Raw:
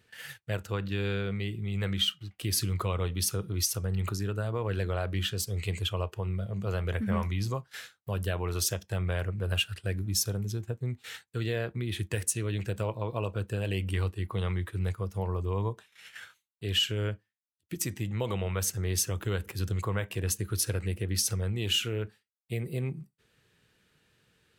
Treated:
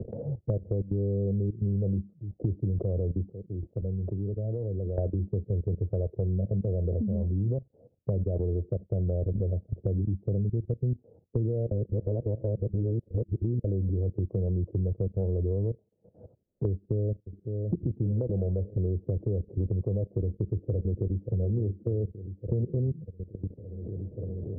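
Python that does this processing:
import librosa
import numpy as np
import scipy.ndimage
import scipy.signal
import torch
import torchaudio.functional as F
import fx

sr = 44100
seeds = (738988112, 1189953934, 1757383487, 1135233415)

y = fx.upward_expand(x, sr, threshold_db=-39.0, expansion=2.5, at=(3.31, 4.97), fade=0.02)
y = fx.echo_throw(y, sr, start_s=16.7, length_s=1.04, ms=560, feedback_pct=45, wet_db=-7.5)
y = fx.echo_throw(y, sr, start_s=20.16, length_s=1.12, ms=580, feedback_pct=60, wet_db=-10.5)
y = fx.edit(y, sr, fx.reverse_span(start_s=11.71, length_s=1.93), tone=tone)
y = fx.level_steps(y, sr, step_db=17)
y = scipy.signal.sosfilt(scipy.signal.butter(8, 600.0, 'lowpass', fs=sr, output='sos'), y)
y = fx.band_squash(y, sr, depth_pct=100)
y = y * librosa.db_to_amplitude(7.0)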